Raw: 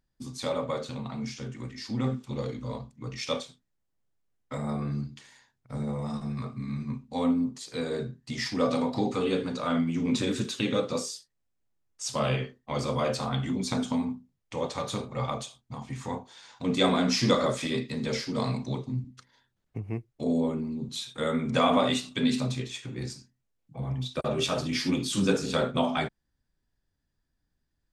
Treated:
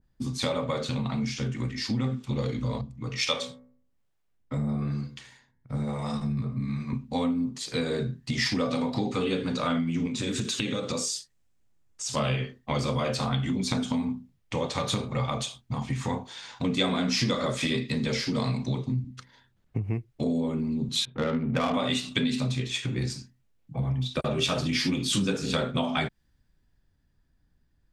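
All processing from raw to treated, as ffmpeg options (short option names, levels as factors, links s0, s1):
-filter_complex "[0:a]asettb=1/sr,asplit=3[s0][s1][s2];[s0]atrim=end=2.814[s3];[s1]atrim=start=2.81:end=6.93,asetpts=PTS-STARTPTS,afade=t=in:d=0.004:c=qsin,afade=t=out:st=4.116:d=0.004:c=qsin,bandreject=f=62.54:t=h:w=4,bandreject=f=125.08:t=h:w=4,bandreject=f=187.62:t=h:w=4,bandreject=f=250.16:t=h:w=4,bandreject=f=312.7:t=h:w=4,bandreject=f=375.24:t=h:w=4,bandreject=f=437.78:t=h:w=4,bandreject=f=500.32:t=h:w=4,bandreject=f=562.86:t=h:w=4,bandreject=f=625.4:t=h:w=4,bandreject=f=687.94:t=h:w=4,bandreject=f=750.48:t=h:w=4,bandreject=f=813.02:t=h:w=4,bandreject=f=875.56:t=h:w=4,bandreject=f=938.1:t=h:w=4,bandreject=f=1000.64:t=h:w=4,bandreject=f=1063.18:t=h:w=4,bandreject=f=1125.72:t=h:w=4,bandreject=f=1188.26:t=h:w=4,bandreject=f=1250.8:t=h:w=4,bandreject=f=1313.34:t=h:w=4,bandreject=f=1375.88:t=h:w=4,bandreject=f=1438.42:t=h:w=4,bandreject=f=1500.96:t=h:w=4,bandreject=f=1563.5:t=h:w=4,bandreject=f=1626.04:t=h:w=4,bandreject=f=1688.58:t=h:w=4,bandreject=f=1751.12:t=h:w=4,bandreject=f=1813.66:t=h:w=4,bandreject=f=1876.2:t=h:w=4,bandreject=f=1938.74:t=h:w=4,bandreject=f=2001.28:t=h:w=4,bandreject=f=2063.82:t=h:w=4,bandreject=f=2126.36:t=h:w=4,bandreject=f=2188.9:t=h:w=4,acrossover=split=440[s4][s5];[s4]aeval=exprs='val(0)*(1-0.7/2+0.7/2*cos(2*PI*1.1*n/s))':c=same[s6];[s5]aeval=exprs='val(0)*(1-0.7/2-0.7/2*cos(2*PI*1.1*n/s))':c=same[s7];[s6][s7]amix=inputs=2:normalize=0[s8];[s2]atrim=start=6.926[s9];[s3][s8]acrossfade=d=0.004:c1=hsin:c2=qsin[s10];[s10][s9]acrossfade=d=0.004:c1=qsin:c2=hsin,asettb=1/sr,asplit=3[s11][s12][s13];[s11]atrim=end=10.074[s14];[s12]atrim=start=10.07:end=12.17,asetpts=PTS-STARTPTS,afade=t=in:d=0.004:c=qsin,afade=t=out:st=2.096:d=0.004:c=qsin,equalizer=f=7300:w=1.5:g=6,acompressor=threshold=0.0178:ratio=3:attack=3.2:release=140:knee=1:detection=peak[s15];[s13]atrim=start=12.166[s16];[s14][s15]acrossfade=d=0.004:c1=hsin:c2=qsin[s17];[s17][s16]acrossfade=d=0.004:c1=qsin:c2=hsin,asettb=1/sr,asplit=3[s18][s19][s20];[s18]atrim=end=21.054[s21];[s19]atrim=start=21.05:end=21.74,asetpts=PTS-STARTPTS,afade=t=in:d=0.004:c=qsin,afade=t=out:st=0.686:d=0.004:c=qsin,lowpass=f=4000:w=0.5412,lowpass=f=4000:w=1.3066,adynamicsmooth=sensitivity=2:basefreq=700[s22];[s20]atrim=start=21.736[s23];[s21][s22]acrossfade=d=0.004:c1=hsin:c2=qsin[s24];[s24][s23]acrossfade=d=0.004:c1=qsin:c2=hsin,bass=f=250:g=5,treble=f=4000:g=-6,acompressor=threshold=0.0251:ratio=4,adynamicequalizer=threshold=0.00251:dfrequency=1800:dqfactor=0.7:tfrequency=1800:tqfactor=0.7:attack=5:release=100:ratio=0.375:range=3.5:mode=boostabove:tftype=highshelf,volume=2"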